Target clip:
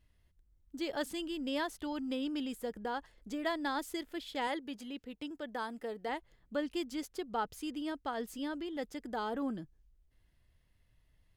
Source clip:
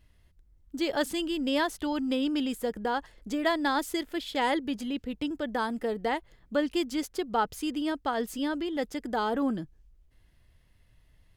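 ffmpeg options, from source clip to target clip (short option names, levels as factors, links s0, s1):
-filter_complex "[0:a]asettb=1/sr,asplit=3[s0][s1][s2];[s0]atrim=end=4.474[s3];[s1]atrim=start=4.47:end=6.09,asetpts=PTS-STARTPTS,afade=t=in:d=0.004:c=qsin,afade=t=out:st=1.616:d=0.004:c=qsin,lowshelf=f=180:g=-10.5[s4];[s2]atrim=start=6.086[s5];[s3][s4]acrossfade=d=0.004:c1=hsin:c2=qsin[s6];[s6][s5]acrossfade=d=0.004:c1=qsin:c2=hsin,volume=0.398"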